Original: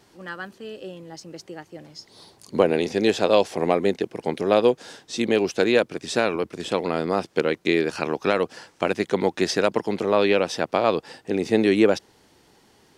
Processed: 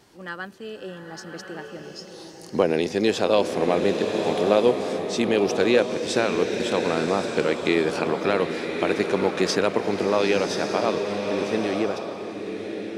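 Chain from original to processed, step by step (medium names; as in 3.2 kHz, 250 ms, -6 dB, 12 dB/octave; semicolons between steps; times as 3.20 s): fade out at the end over 3.21 s; in parallel at -1 dB: peak limiter -13 dBFS, peak gain reduction 8 dB; on the sum: swelling reverb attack 1170 ms, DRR 4 dB; trim -5 dB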